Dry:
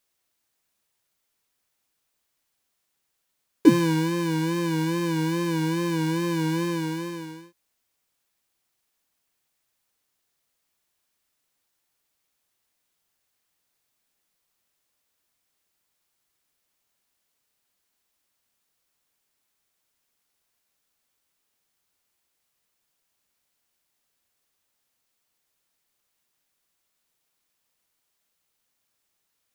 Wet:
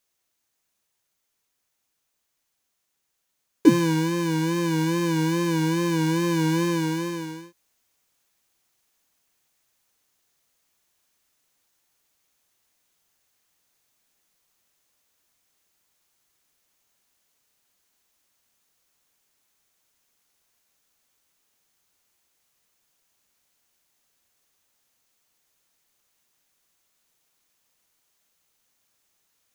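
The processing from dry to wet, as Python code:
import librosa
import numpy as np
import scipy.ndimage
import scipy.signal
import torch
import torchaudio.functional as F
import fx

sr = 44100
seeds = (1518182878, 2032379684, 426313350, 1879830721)

p1 = fx.peak_eq(x, sr, hz=6400.0, db=4.5, octaves=0.21)
p2 = fx.rider(p1, sr, range_db=5, speed_s=2.0)
p3 = p1 + F.gain(torch.from_numpy(p2), 1.0).numpy()
y = F.gain(torch.from_numpy(p3), -5.0).numpy()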